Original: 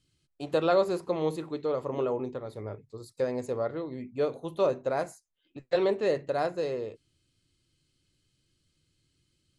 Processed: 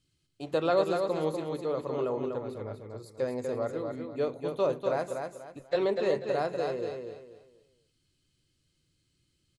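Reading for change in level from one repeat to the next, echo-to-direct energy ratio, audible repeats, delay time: -10.5 dB, -4.5 dB, 3, 0.244 s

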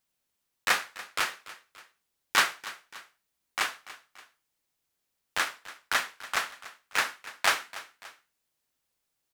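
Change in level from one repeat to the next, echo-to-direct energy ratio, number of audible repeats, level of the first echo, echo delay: -6.0 dB, -16.0 dB, 2, -17.0 dB, 0.288 s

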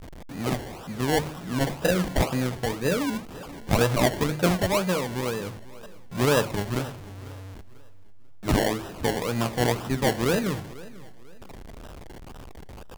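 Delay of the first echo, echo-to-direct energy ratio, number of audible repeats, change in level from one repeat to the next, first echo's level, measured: 0.494 s, -19.0 dB, 2, -9.0 dB, -19.5 dB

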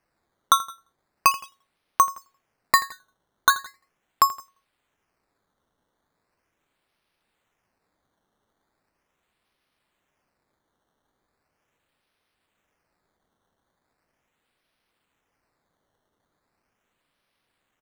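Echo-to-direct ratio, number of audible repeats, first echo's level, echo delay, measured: -17.0 dB, 2, -18.0 dB, 83 ms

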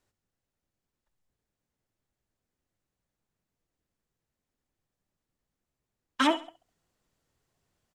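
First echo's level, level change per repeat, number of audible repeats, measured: -16.0 dB, -9.0 dB, 3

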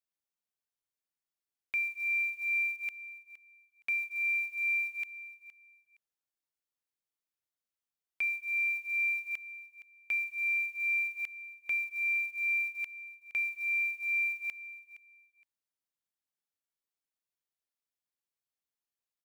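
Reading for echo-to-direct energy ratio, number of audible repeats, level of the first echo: -16.0 dB, 2, -16.0 dB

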